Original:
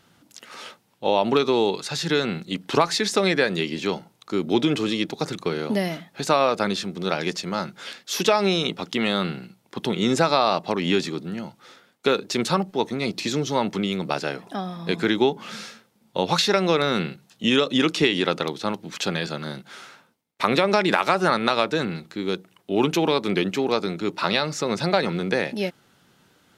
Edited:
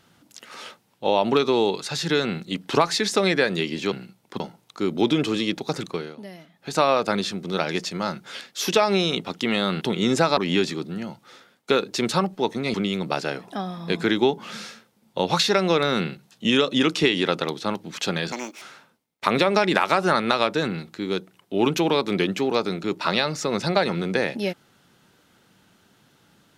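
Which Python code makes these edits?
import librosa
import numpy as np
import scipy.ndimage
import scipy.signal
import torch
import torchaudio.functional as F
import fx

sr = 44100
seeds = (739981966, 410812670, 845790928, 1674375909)

y = fx.edit(x, sr, fx.fade_down_up(start_s=5.36, length_s=0.97, db=-16.0, fade_s=0.32),
    fx.move(start_s=9.33, length_s=0.48, to_s=3.92),
    fx.cut(start_s=10.37, length_s=0.36),
    fx.cut(start_s=13.1, length_s=0.63),
    fx.speed_span(start_s=19.31, length_s=0.48, speed=1.61), tone=tone)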